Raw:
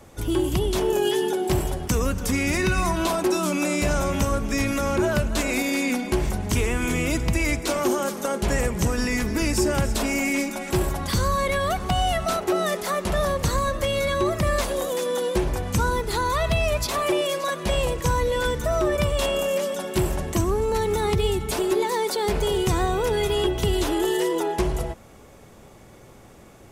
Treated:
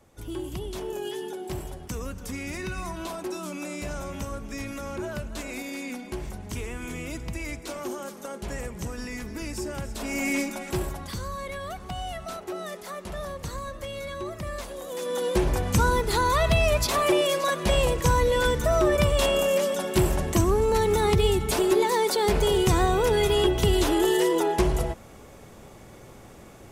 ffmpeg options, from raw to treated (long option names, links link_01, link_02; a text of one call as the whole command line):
ffmpeg -i in.wav -af "volume=10.5dB,afade=type=in:start_time=9.96:duration=0.36:silence=0.354813,afade=type=out:start_time=10.32:duration=0.87:silence=0.334965,afade=type=in:start_time=14.83:duration=0.67:silence=0.237137" out.wav